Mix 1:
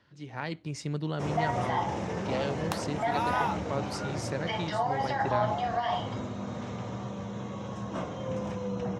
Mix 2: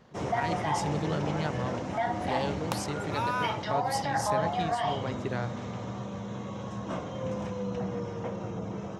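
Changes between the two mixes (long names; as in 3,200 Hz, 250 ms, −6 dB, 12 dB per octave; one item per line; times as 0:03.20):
speech: remove high-frequency loss of the air 53 metres
first sound: entry −1.05 s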